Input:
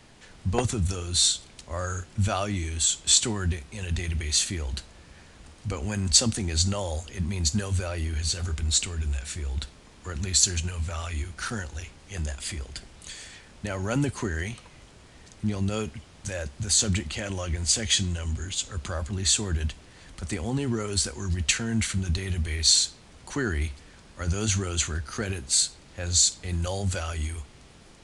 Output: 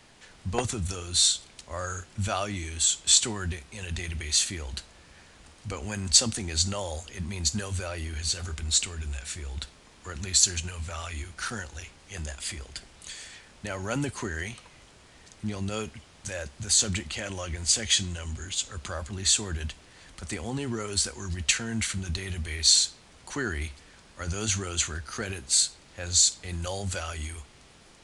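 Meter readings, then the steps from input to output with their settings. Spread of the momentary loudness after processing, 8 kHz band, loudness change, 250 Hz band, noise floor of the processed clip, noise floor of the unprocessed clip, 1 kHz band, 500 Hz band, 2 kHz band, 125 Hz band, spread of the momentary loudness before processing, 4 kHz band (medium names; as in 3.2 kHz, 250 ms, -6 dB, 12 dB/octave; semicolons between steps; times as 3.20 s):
18 LU, 0.0 dB, -0.5 dB, -4.5 dB, -55 dBFS, -52 dBFS, -1.0 dB, -2.5 dB, -0.5 dB, -5.5 dB, 15 LU, 0.0 dB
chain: bass shelf 420 Hz -6 dB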